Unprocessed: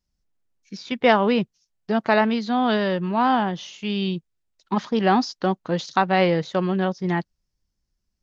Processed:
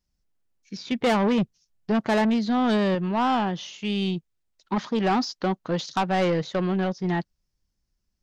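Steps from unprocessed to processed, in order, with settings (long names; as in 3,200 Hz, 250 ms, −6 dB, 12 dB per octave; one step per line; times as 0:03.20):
0:00.76–0:02.95: low-shelf EQ 280 Hz +7 dB
soft clipping −17.5 dBFS, distortion −11 dB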